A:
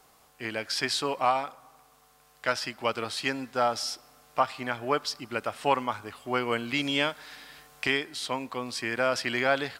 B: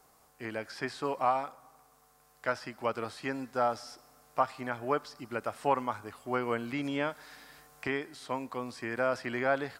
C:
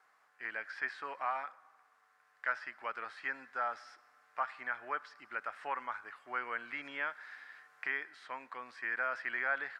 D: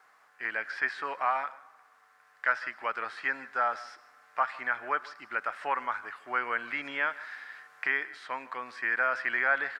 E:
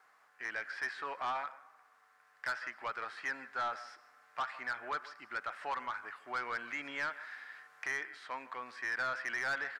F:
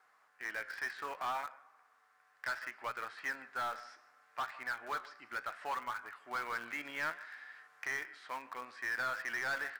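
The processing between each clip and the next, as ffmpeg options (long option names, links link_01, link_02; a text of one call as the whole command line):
ffmpeg -i in.wav -filter_complex "[0:a]acrossover=split=2600[link_01][link_02];[link_02]acompressor=threshold=-42dB:ratio=4:attack=1:release=60[link_03];[link_01][link_03]amix=inputs=2:normalize=0,equalizer=frequency=3100:width=1.2:gain=-7.5,volume=-2.5dB" out.wav
ffmpeg -i in.wav -filter_complex "[0:a]asplit=2[link_01][link_02];[link_02]alimiter=limit=-24dB:level=0:latency=1,volume=-2dB[link_03];[link_01][link_03]amix=inputs=2:normalize=0,bandpass=frequency=1700:width_type=q:width=2.7:csg=0" out.wav
ffmpeg -i in.wav -af "aecho=1:1:155:0.0944,volume=7.5dB" out.wav
ffmpeg -i in.wav -af "asoftclip=type=tanh:threshold=-25dB,volume=-4.5dB" out.wav
ffmpeg -i in.wav -filter_complex "[0:a]flanger=delay=8:depth=9.4:regen=76:speed=0.67:shape=sinusoidal,asplit=2[link_01][link_02];[link_02]acrusher=bits=6:mix=0:aa=0.000001,volume=-12dB[link_03];[link_01][link_03]amix=inputs=2:normalize=0,volume=1.5dB" out.wav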